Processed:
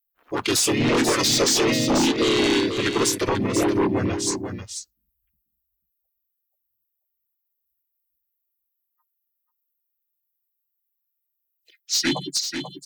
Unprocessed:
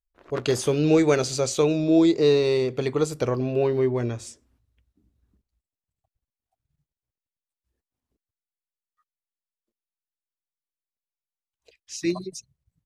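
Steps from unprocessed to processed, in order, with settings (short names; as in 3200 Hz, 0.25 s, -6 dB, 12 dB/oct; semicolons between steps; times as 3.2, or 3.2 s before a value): per-bin expansion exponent 1.5; tilt +3.5 dB/oct; limiter -19.5 dBFS, peak gain reduction 10.5 dB; harmoniser -5 st 0 dB, -3 st -1 dB; sine folder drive 9 dB, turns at -11 dBFS; on a send: echo 0.489 s -7.5 dB; on the sum: gain -5 dB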